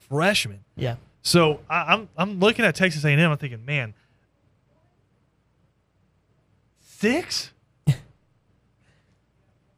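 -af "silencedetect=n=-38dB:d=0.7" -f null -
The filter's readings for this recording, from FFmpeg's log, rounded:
silence_start: 3.91
silence_end: 6.93 | silence_duration: 3.02
silence_start: 8.01
silence_end: 9.77 | silence_duration: 1.76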